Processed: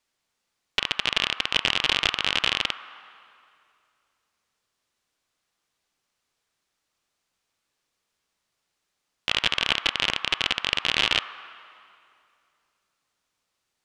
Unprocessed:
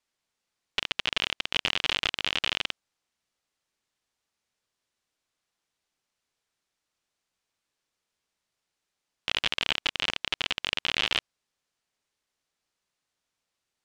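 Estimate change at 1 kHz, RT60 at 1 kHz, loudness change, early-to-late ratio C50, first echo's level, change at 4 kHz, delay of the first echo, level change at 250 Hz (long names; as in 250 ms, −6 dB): +5.5 dB, 2.4 s, +4.5 dB, 10.0 dB, no echo audible, +4.5 dB, no echo audible, +4.5 dB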